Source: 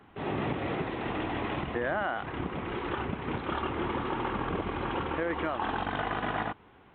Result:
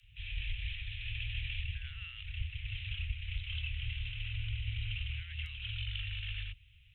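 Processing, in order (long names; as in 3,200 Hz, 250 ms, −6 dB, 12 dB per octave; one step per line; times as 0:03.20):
Chebyshev band-stop filter 120–2,700 Hz, order 4
frequency shifter −150 Hz
level +5 dB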